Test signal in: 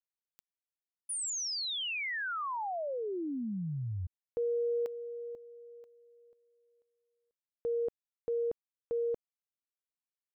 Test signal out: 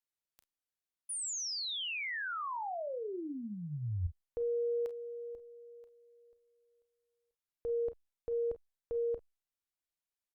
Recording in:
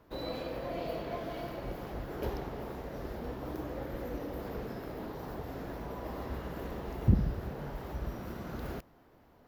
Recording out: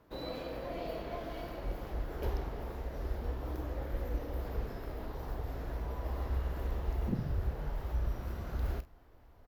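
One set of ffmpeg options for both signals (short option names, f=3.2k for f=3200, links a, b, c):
-filter_complex "[0:a]asubboost=boost=7:cutoff=69,afftfilt=real='re*lt(hypot(re,im),0.794)':imag='im*lt(hypot(re,im),0.794)':win_size=1024:overlap=0.75,asplit=2[a][b];[b]aecho=0:1:34|47:0.2|0.168[c];[a][c]amix=inputs=2:normalize=0,volume=-2.5dB" -ar 48000 -c:a libopus -b:a 256k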